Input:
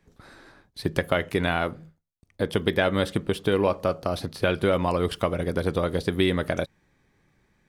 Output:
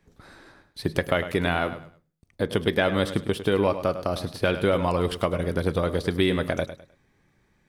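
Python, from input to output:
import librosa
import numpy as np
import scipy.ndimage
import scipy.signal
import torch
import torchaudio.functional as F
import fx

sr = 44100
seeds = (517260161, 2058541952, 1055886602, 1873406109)

y = fx.echo_feedback(x, sr, ms=103, feedback_pct=28, wet_db=-12.0)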